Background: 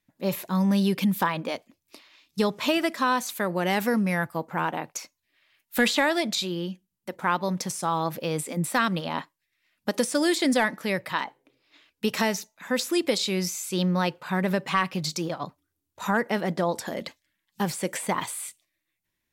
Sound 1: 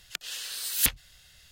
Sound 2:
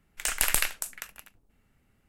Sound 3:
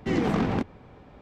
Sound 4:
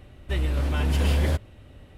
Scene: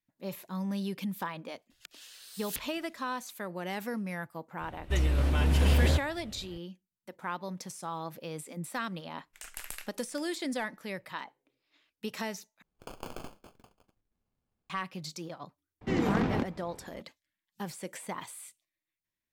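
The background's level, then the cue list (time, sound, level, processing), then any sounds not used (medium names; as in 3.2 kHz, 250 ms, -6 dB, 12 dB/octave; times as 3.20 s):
background -11.5 dB
1.70 s: add 1 -14.5 dB
4.61 s: add 4 -1.5 dB
9.16 s: add 2 -17 dB
12.62 s: replace with 2 -16 dB + sample-and-hold 23×
15.81 s: add 3 -3.5 dB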